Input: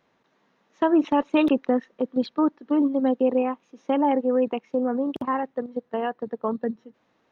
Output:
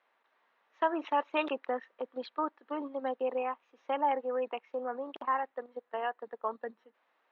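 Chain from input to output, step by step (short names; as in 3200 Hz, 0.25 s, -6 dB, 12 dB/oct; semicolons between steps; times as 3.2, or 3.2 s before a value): BPF 770–2900 Hz; gain -2 dB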